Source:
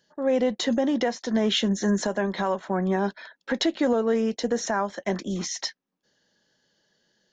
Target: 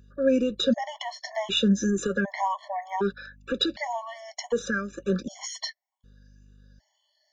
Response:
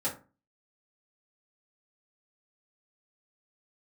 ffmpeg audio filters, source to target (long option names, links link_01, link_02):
-af "afftfilt=real='re*pow(10,11/40*sin(2*PI*(0.67*log(max(b,1)*sr/1024/100)/log(2)-(2)*(pts-256)/sr)))':imag='im*pow(10,11/40*sin(2*PI*(0.67*log(max(b,1)*sr/1024/100)/log(2)-(2)*(pts-256)/sr)))':win_size=1024:overlap=0.75,aeval=exprs='val(0)+0.00251*(sin(2*PI*50*n/s)+sin(2*PI*2*50*n/s)/2+sin(2*PI*3*50*n/s)/3+sin(2*PI*4*50*n/s)/4+sin(2*PI*5*50*n/s)/5)':channel_layout=same,afftfilt=real='re*gt(sin(2*PI*0.66*pts/sr)*(1-2*mod(floor(b*sr/1024/580),2)),0)':imag='im*gt(sin(2*PI*0.66*pts/sr)*(1-2*mod(floor(b*sr/1024/580),2)),0)':win_size=1024:overlap=0.75"